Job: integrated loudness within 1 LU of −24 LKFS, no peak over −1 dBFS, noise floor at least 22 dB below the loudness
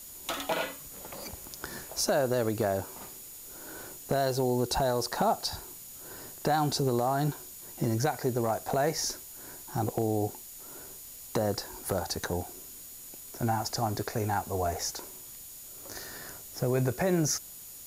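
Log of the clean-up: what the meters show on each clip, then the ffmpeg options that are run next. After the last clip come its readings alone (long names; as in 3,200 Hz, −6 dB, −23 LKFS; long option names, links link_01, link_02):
interfering tone 6,900 Hz; level of the tone −52 dBFS; background noise floor −46 dBFS; target noise floor −53 dBFS; integrated loudness −31.0 LKFS; sample peak −17.0 dBFS; target loudness −24.0 LKFS
→ -af "bandreject=frequency=6900:width=30"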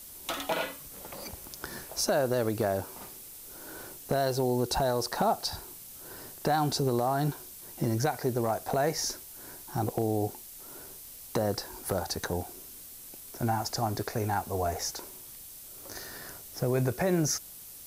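interfering tone none found; background noise floor −47 dBFS; target noise floor −53 dBFS
→ -af "afftdn=noise_reduction=6:noise_floor=-47"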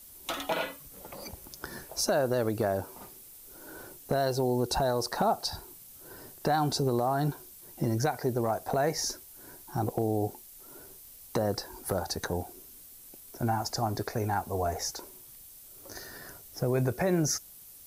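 background noise floor −51 dBFS; target noise floor −53 dBFS
→ -af "afftdn=noise_reduction=6:noise_floor=-51"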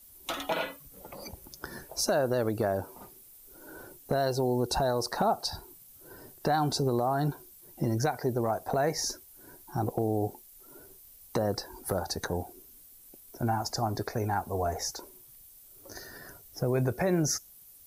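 background noise floor −54 dBFS; integrated loudness −30.5 LKFS; sample peak −17.5 dBFS; target loudness −24.0 LKFS
→ -af "volume=6.5dB"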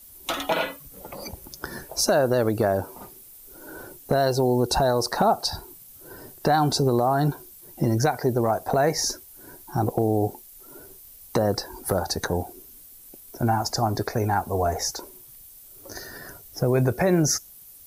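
integrated loudness −24.0 LKFS; sample peak −11.0 dBFS; background noise floor −48 dBFS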